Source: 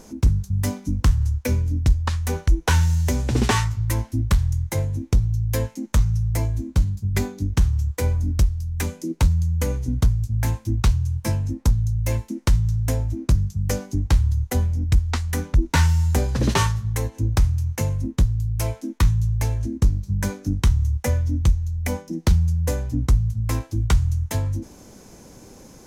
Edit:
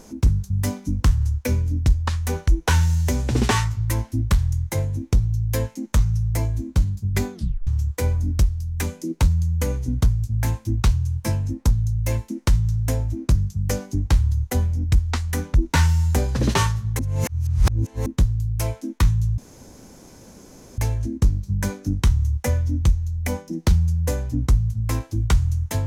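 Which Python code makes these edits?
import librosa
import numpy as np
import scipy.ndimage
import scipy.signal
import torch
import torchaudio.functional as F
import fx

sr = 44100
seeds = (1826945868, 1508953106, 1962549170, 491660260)

y = fx.edit(x, sr, fx.tape_stop(start_s=7.34, length_s=0.33),
    fx.reverse_span(start_s=16.99, length_s=1.07),
    fx.insert_room_tone(at_s=19.38, length_s=1.4), tone=tone)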